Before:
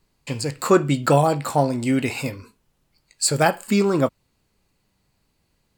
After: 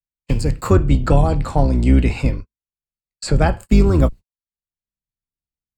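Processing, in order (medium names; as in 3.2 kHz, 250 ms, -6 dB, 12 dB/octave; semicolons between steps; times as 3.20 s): octave divider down 2 oct, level +2 dB; gate -31 dBFS, range -53 dB; bass shelf 270 Hz +9 dB; level rider gain up to 5 dB; 0.73–3.60 s: distance through air 65 m; three bands compressed up and down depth 40%; trim -1 dB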